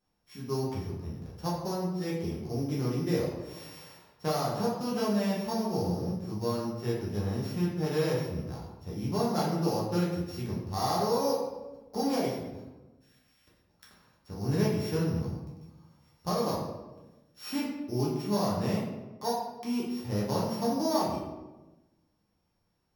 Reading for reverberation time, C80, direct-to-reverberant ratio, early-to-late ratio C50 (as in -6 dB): 1.1 s, 5.0 dB, -6.0 dB, 2.0 dB